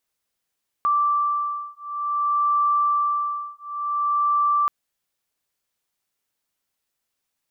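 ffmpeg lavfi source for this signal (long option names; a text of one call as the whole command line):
ffmpeg -f lavfi -i "aevalsrc='0.075*(sin(2*PI*1170*t)+sin(2*PI*1170.55*t))':duration=3.83:sample_rate=44100" out.wav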